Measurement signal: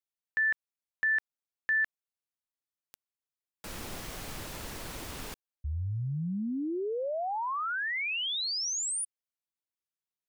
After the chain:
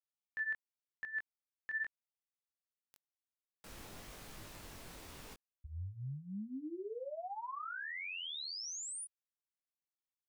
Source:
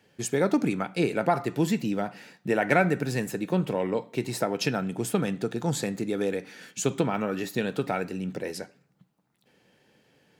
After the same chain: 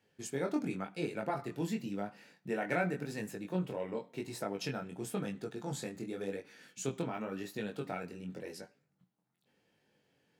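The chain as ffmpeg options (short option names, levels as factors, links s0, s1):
-af "flanger=delay=19:depth=4.3:speed=0.92,volume=0.398"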